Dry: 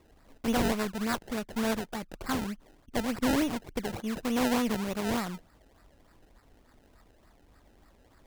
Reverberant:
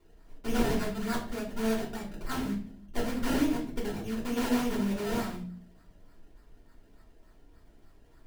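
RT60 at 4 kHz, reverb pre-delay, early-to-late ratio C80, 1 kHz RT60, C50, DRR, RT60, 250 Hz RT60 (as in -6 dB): 0.35 s, 3 ms, 12.0 dB, 0.40 s, 7.5 dB, -4.5 dB, 0.45 s, 0.85 s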